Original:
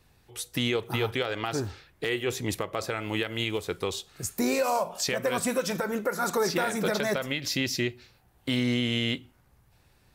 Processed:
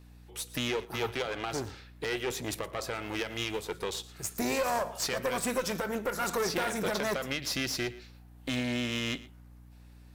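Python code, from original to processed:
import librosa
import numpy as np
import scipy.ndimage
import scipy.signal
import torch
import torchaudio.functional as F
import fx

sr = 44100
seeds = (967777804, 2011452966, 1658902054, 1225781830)

p1 = fx.diode_clip(x, sr, knee_db=-33.0)
p2 = fx.low_shelf(p1, sr, hz=110.0, db=-10.0)
p3 = fx.add_hum(p2, sr, base_hz=60, snr_db=19)
p4 = p3 + fx.echo_single(p3, sr, ms=115, db=-18.5, dry=0)
y = fx.band_widen(p4, sr, depth_pct=40, at=(0.85, 1.26))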